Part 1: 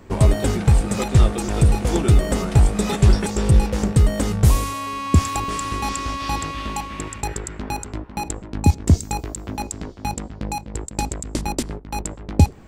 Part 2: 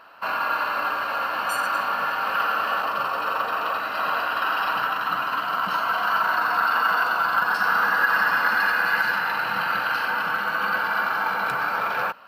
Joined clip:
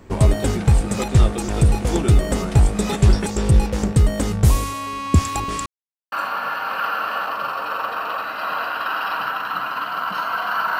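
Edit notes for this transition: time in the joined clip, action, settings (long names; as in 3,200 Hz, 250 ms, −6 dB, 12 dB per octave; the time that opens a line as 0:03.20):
part 1
0:05.66–0:06.12: silence
0:06.12: continue with part 2 from 0:01.68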